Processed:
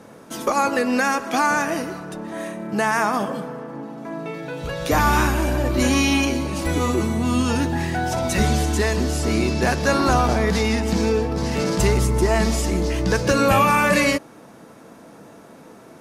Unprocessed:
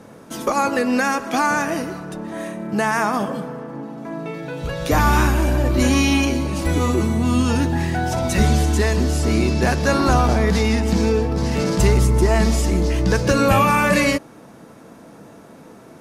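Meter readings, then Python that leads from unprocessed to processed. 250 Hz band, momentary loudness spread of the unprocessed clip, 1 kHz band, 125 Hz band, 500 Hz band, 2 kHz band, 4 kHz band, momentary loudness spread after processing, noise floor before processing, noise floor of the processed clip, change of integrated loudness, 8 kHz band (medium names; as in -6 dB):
-2.0 dB, 13 LU, 0.0 dB, -4.0 dB, -1.0 dB, 0.0 dB, 0.0 dB, 13 LU, -44 dBFS, -45 dBFS, -1.5 dB, 0.0 dB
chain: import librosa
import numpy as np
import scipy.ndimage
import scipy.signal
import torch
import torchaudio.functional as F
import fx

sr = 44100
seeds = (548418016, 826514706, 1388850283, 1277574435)

y = fx.low_shelf(x, sr, hz=210.0, db=-5.0)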